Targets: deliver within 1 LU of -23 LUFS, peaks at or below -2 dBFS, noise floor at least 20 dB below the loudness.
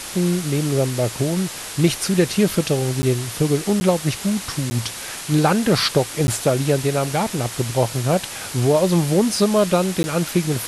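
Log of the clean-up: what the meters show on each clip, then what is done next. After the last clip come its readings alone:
dropouts 5; longest dropout 10 ms; noise floor -32 dBFS; noise floor target -40 dBFS; loudness -20.0 LUFS; peak level -4.0 dBFS; loudness target -23.0 LUFS
-> interpolate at 3.02/3.80/4.70/6.27/10.03 s, 10 ms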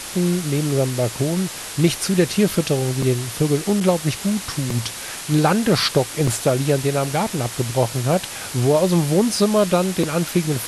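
dropouts 0; noise floor -32 dBFS; noise floor target -40 dBFS
-> noise print and reduce 8 dB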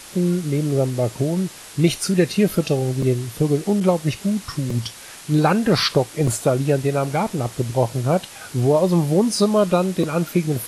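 noise floor -40 dBFS; noise floor target -41 dBFS
-> noise print and reduce 6 dB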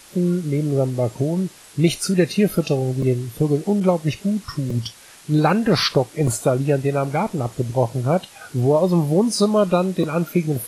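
noise floor -45 dBFS; loudness -20.5 LUFS; peak level -4.5 dBFS; loudness target -23.0 LUFS
-> trim -2.5 dB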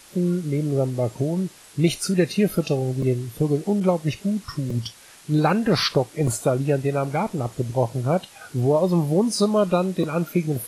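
loudness -23.0 LUFS; peak level -7.0 dBFS; noise floor -48 dBFS

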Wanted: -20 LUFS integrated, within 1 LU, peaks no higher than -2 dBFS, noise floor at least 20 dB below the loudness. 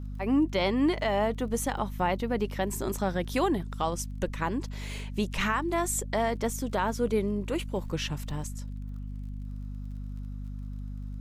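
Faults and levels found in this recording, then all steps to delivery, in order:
tick rate 35 per s; hum 50 Hz; highest harmonic 250 Hz; hum level -34 dBFS; loudness -30.5 LUFS; peak level -15.5 dBFS; loudness target -20.0 LUFS
-> de-click; de-hum 50 Hz, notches 5; trim +10.5 dB

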